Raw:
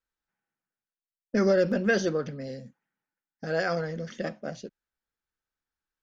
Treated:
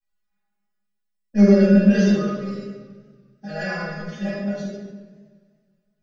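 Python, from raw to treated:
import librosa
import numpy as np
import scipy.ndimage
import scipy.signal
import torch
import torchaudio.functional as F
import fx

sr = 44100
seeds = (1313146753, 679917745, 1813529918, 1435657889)

y = fx.stiff_resonator(x, sr, f0_hz=200.0, decay_s=0.24, stiffness=0.002)
y = fx.room_shoebox(y, sr, seeds[0], volume_m3=610.0, walls='mixed', distance_m=8.7)
y = fx.echo_warbled(y, sr, ms=95, feedback_pct=74, rate_hz=2.8, cents=89, wet_db=-22)
y = F.gain(torch.from_numpy(y), 1.0).numpy()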